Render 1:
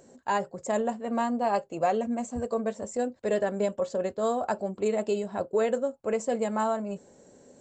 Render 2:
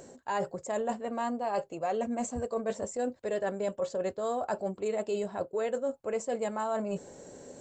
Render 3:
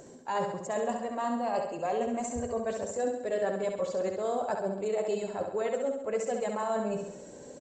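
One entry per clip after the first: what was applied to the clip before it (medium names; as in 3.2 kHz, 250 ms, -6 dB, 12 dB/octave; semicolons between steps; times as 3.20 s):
peaking EQ 220 Hz -5 dB 0.44 oct; reverse; compression 5:1, threshold -37 dBFS, peak gain reduction 14.5 dB; reverse; trim +7 dB
coarse spectral quantiser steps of 15 dB; on a send: flutter echo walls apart 11.5 m, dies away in 0.77 s; on the sum: resampled via 32 kHz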